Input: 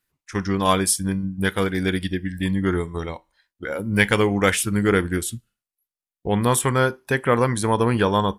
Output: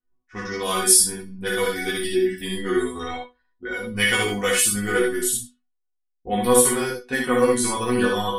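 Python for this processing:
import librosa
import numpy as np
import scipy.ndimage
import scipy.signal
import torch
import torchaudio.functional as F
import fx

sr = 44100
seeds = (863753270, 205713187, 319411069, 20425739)

p1 = fx.high_shelf(x, sr, hz=4400.0, db=10.5)
p2 = fx.resonator_bank(p1, sr, root=59, chord='fifth', decay_s=0.27)
p3 = fx.rider(p2, sr, range_db=4, speed_s=2.0)
p4 = p2 + (p3 * librosa.db_to_amplitude(2.5))
p5 = fx.chorus_voices(p4, sr, voices=6, hz=0.29, base_ms=17, depth_ms=2.7, mix_pct=45)
p6 = p5 + fx.room_early_taps(p5, sr, ms=(59, 75), db=(-4.0, -6.5), dry=0)
p7 = fx.env_lowpass(p6, sr, base_hz=690.0, full_db=-30.5)
y = p7 * librosa.db_to_amplitude(8.0)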